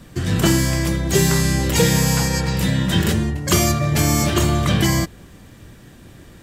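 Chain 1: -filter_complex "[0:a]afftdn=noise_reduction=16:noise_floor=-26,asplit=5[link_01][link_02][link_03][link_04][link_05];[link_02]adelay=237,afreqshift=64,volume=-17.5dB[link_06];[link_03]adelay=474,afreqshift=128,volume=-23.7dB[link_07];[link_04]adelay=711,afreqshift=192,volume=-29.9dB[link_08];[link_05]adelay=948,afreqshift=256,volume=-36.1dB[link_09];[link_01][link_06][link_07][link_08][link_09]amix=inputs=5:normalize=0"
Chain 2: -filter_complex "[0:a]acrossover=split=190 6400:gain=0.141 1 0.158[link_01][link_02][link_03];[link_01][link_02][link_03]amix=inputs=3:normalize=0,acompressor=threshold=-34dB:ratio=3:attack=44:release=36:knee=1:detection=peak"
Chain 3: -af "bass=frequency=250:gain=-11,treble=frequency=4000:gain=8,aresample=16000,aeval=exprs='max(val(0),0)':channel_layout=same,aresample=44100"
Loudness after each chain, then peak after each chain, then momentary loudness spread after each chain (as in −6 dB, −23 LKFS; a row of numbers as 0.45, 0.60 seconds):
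−18.5, −28.5, −23.0 LKFS; −5.0, −12.5, −3.5 dBFS; 4, 20, 7 LU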